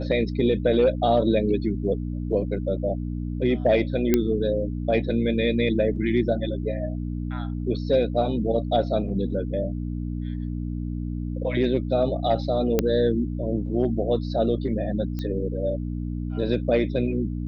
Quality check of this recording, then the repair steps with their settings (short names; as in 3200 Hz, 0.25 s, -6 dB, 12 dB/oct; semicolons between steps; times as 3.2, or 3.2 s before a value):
hum 60 Hz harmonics 5 -29 dBFS
4.14 pop -6 dBFS
12.79 pop -7 dBFS
15.19 pop -19 dBFS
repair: de-click; de-hum 60 Hz, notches 5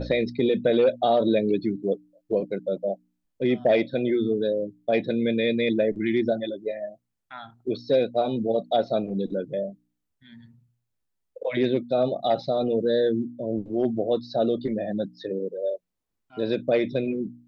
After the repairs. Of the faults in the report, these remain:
15.19 pop